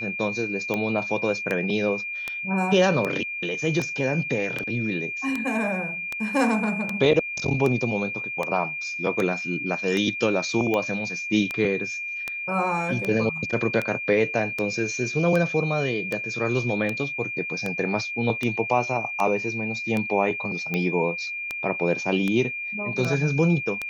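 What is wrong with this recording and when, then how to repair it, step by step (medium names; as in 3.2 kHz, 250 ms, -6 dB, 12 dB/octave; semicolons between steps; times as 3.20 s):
tick 78 rpm -13 dBFS
whine 2.4 kHz -29 dBFS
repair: de-click; band-stop 2.4 kHz, Q 30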